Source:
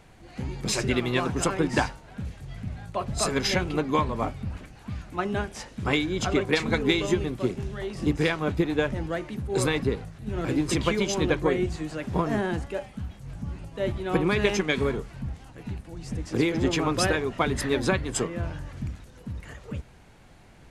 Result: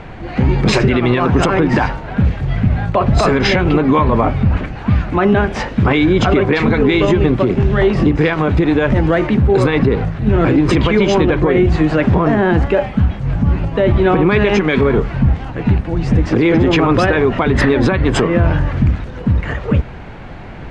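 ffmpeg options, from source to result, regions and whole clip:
-filter_complex "[0:a]asettb=1/sr,asplit=3[a][b][c];[a]atrim=end=8.334[d];[b]atrim=start=8.33:end=9.27,asetpts=PTS-STARTPTS,afade=t=in:d=0.004:c=qsin,afade=t=out:st=0.936:d=0.004:c=qsin,highshelf=f=7k:g=11,acompressor=threshold=-30dB:ratio=4:attack=3.2:release=140:knee=1:detection=peak[e];[c]atrim=start=9.266[f];[d][e]acrossfade=d=0.004:c1=hsin:c2=qsin[g];[g][f]acrossfade=d=0.004:c1=qsin:c2=hsin,lowpass=2.5k,acompressor=threshold=-25dB:ratio=6,alimiter=level_in=24.5dB:limit=-1dB:release=50:level=0:latency=1,volume=-3dB"

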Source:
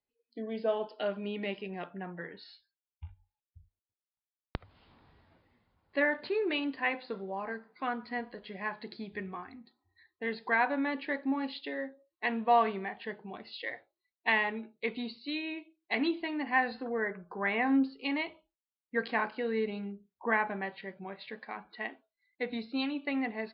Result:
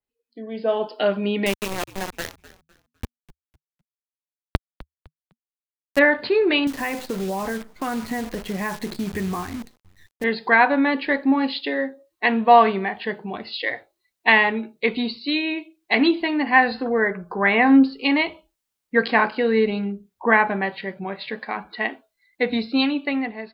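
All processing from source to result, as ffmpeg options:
-filter_complex "[0:a]asettb=1/sr,asplit=3[a][b][c];[a]atrim=end=1.464[d];[b]atrim=start=1.46:end=5.99,asetpts=PTS-STARTPTS,afade=t=in:d=0.004:c=qsin,afade=t=out:st=4.526:d=0.004:c=qsin,aeval=exprs='val(0)*gte(abs(val(0)),0.015)':c=same,asplit=4[e][f][g][h];[f]adelay=253,afreqshift=-80,volume=-18dB[i];[g]adelay=506,afreqshift=-160,volume=-28.2dB[j];[h]adelay=759,afreqshift=-240,volume=-38.3dB[k];[e][i][j][k]amix=inputs=4:normalize=0,atrim=end_sample=199773[l];[c]atrim=start=5.986[m];[d][l]acrossfade=d=0.004:c1=hsin:c2=qsin[n];[n][m]acrossfade=d=0.004:c1=qsin:c2=hsin,asettb=1/sr,asplit=3[o][p][q];[o]atrim=end=6.674[r];[p]atrim=start=6.67:end=10.24,asetpts=PTS-STARTPTS,afade=t=in:d=0.004:c=qsin,afade=t=out:st=3.566:d=0.004:c=qsin,aemphasis=mode=reproduction:type=bsi,acompressor=threshold=-36dB:ratio=4:attack=3.2:release=140:knee=1:detection=peak,acrusher=bits=9:dc=4:mix=0:aa=0.000001[s];[q]atrim=start=10.236[t];[r][s]acrossfade=d=0.004:c1=hsin:c2=qsin[u];[u][t]acrossfade=d=0.004:c1=qsin:c2=hsin,lowshelf=f=70:g=7,dynaudnorm=f=160:g=9:m=13dB,adynamicequalizer=threshold=0.0178:dfrequency=4200:dqfactor=0.7:tfrequency=4200:tqfactor=0.7:attack=5:release=100:ratio=0.375:range=2:mode=boostabove:tftype=highshelf"

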